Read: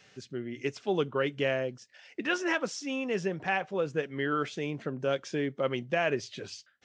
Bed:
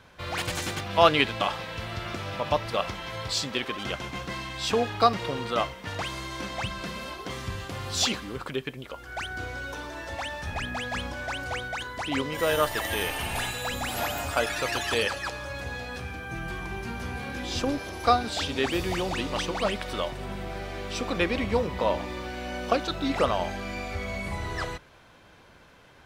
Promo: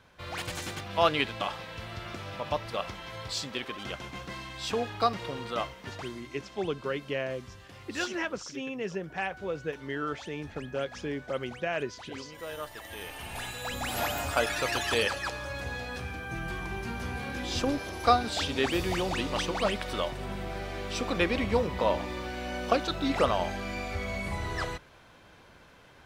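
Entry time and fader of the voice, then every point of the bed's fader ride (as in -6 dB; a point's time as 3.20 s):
5.70 s, -3.5 dB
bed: 5.85 s -5.5 dB
6.23 s -14.5 dB
12.82 s -14.5 dB
13.96 s -1 dB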